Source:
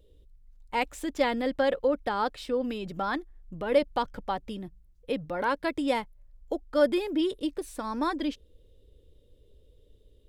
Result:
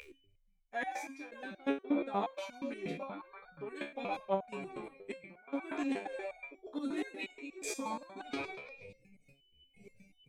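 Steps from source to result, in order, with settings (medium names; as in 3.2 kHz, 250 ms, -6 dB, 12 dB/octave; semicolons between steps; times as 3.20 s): frequency-shifting echo 115 ms, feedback 49%, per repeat +72 Hz, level -10 dB; trance gate "x.xxxxx...xxx.xx" 114 bpm -24 dB; whistle 3 kHz -47 dBFS; formant shift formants -4 st; reverse; compression 8:1, threshold -36 dBFS, peak gain reduction 18.5 dB; reverse; spectral noise reduction 21 dB; resonator arpeggio 8.4 Hz 71–740 Hz; trim +14 dB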